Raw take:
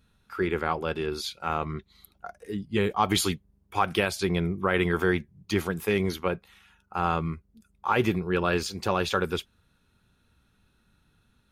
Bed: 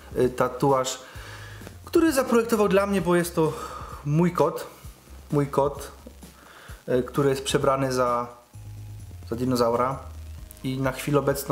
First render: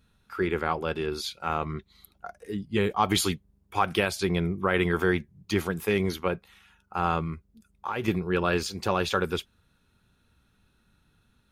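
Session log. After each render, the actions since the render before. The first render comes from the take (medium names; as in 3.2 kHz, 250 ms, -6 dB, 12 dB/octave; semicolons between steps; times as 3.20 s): 7.22–8.08 s: compression, threshold -26 dBFS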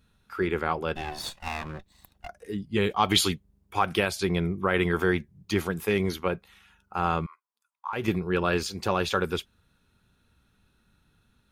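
0.95–2.28 s: comb filter that takes the minimum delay 1.1 ms; 2.82–3.28 s: peaking EQ 3.3 kHz +6 dB 1.1 oct; 7.26–7.93 s: ladder high-pass 920 Hz, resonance 75%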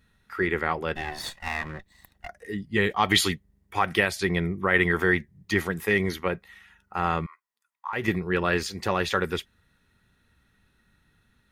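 peaking EQ 1.9 kHz +14 dB 0.22 oct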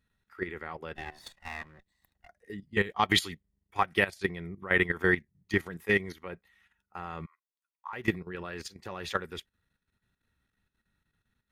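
level held to a coarse grid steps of 11 dB; upward expansion 1.5:1, over -42 dBFS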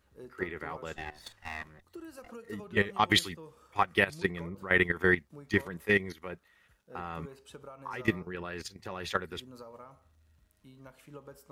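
add bed -26.5 dB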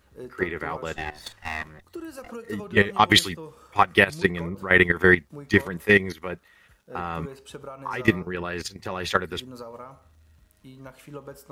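trim +8.5 dB; peak limiter -3 dBFS, peak gain reduction 2 dB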